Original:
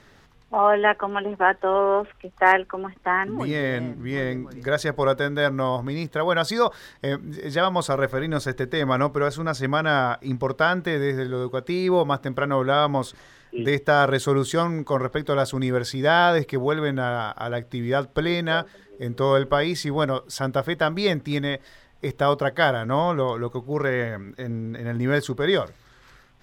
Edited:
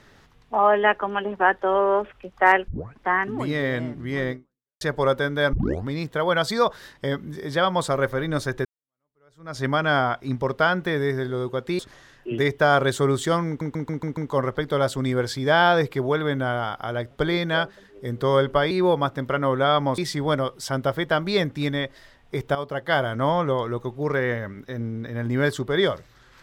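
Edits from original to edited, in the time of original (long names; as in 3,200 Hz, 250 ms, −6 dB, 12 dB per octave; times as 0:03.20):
0:02.68: tape start 0.32 s
0:04.31–0:04.81: fade out exponential
0:05.53: tape start 0.34 s
0:08.65–0:09.59: fade in exponential
0:11.79–0:13.06: move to 0:19.68
0:14.74: stutter 0.14 s, 6 plays
0:17.68–0:18.08: remove
0:22.25–0:22.79: fade in, from −12.5 dB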